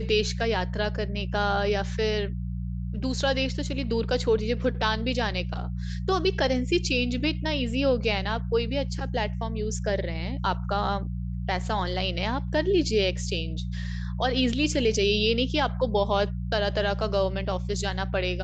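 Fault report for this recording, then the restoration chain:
mains hum 60 Hz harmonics 3 −31 dBFS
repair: hum removal 60 Hz, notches 3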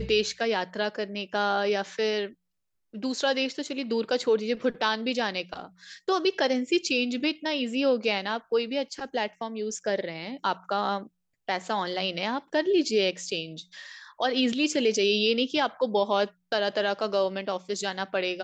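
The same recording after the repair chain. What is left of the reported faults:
none of them is left

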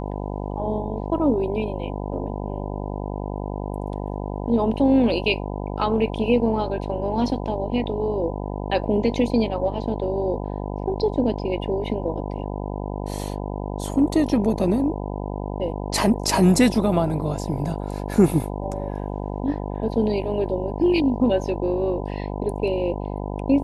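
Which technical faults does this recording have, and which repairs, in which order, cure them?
mains buzz 50 Hz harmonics 20 −29 dBFS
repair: hum removal 50 Hz, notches 20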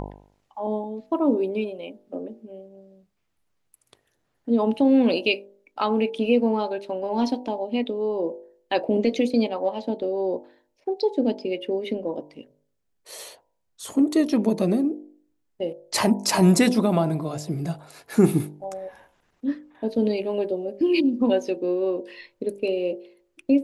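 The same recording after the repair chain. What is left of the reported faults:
none of them is left

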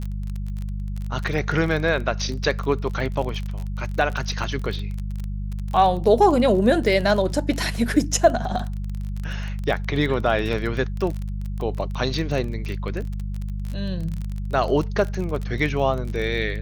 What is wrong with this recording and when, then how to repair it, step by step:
surface crackle 28 per second −27 dBFS
mains hum 50 Hz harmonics 4 −28 dBFS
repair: click removal
hum removal 50 Hz, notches 4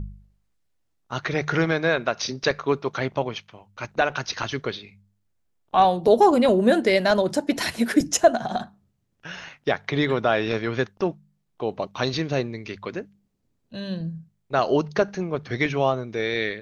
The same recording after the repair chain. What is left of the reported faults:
none of them is left

